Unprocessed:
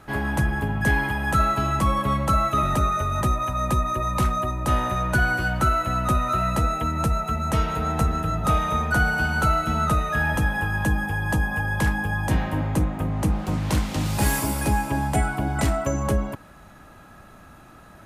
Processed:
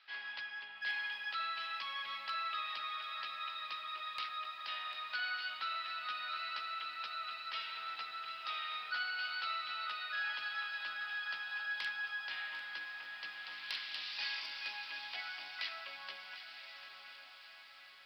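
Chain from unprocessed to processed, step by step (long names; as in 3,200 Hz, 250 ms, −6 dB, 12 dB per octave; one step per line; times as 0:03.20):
flat-topped band-pass 4,300 Hz, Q 0.85
on a send: feedback delay with all-pass diffusion 1,055 ms, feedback 53%, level −9 dB
on the sum: downsampling to 11,025 Hz
gain into a clipping stage and back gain 25.5 dB
feedback echo at a low word length 746 ms, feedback 35%, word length 10 bits, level −12.5 dB
level −3 dB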